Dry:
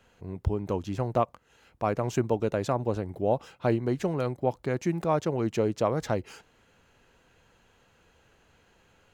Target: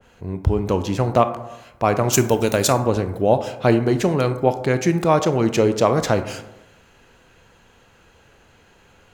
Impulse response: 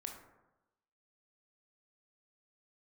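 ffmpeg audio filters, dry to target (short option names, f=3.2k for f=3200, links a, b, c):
-filter_complex "[0:a]asplit=3[a][b][c];[a]afade=t=out:st=2.12:d=0.02[d];[b]aemphasis=mode=production:type=75fm,afade=t=in:st=2.12:d=0.02,afade=t=out:st=2.72:d=0.02[e];[c]afade=t=in:st=2.72:d=0.02[f];[d][e][f]amix=inputs=3:normalize=0,asplit=2[g][h];[1:a]atrim=start_sample=2205[i];[h][i]afir=irnorm=-1:irlink=0,volume=2.5dB[j];[g][j]amix=inputs=2:normalize=0,adynamicequalizer=threshold=0.0112:dfrequency=1700:dqfactor=0.7:tfrequency=1700:tqfactor=0.7:attack=5:release=100:ratio=0.375:range=2.5:mode=boostabove:tftype=highshelf,volume=4dB"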